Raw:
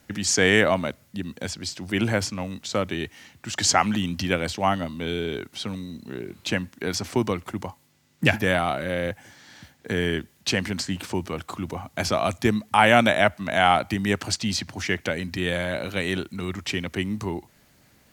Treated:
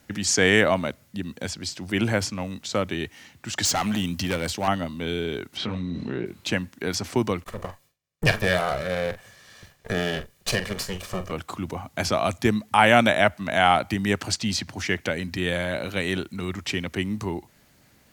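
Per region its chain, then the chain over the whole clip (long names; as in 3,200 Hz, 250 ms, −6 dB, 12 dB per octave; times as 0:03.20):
0:03.65–0:04.68: high-shelf EQ 8,000 Hz +8.5 dB + hard clipping −20 dBFS
0:05.57–0:06.26: low-pass filter 3,200 Hz + double-tracking delay 23 ms −4.5 dB + envelope flattener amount 70%
0:07.44–0:11.32: lower of the sound and its delayed copy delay 1.7 ms + noise gate with hold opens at −53 dBFS, closes at −56 dBFS + double-tracking delay 44 ms −11.5 dB
whole clip: no processing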